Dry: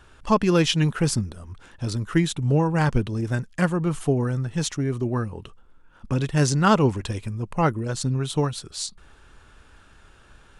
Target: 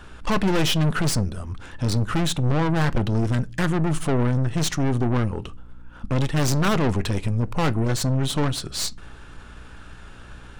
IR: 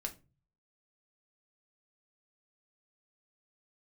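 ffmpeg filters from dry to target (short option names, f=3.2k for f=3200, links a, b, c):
-filter_complex "[0:a]aeval=exprs='(tanh(28.2*val(0)+0.5)-tanh(0.5))/28.2':c=same,asplit=2[a][b];[1:a]atrim=start_sample=2205,lowpass=5.7k[c];[b][c]afir=irnorm=-1:irlink=0,volume=-7.5dB[d];[a][d]amix=inputs=2:normalize=0,aeval=exprs='val(0)+0.002*(sin(2*PI*60*n/s)+sin(2*PI*2*60*n/s)/2+sin(2*PI*3*60*n/s)/3+sin(2*PI*4*60*n/s)/4+sin(2*PI*5*60*n/s)/5)':c=same,volume=7.5dB"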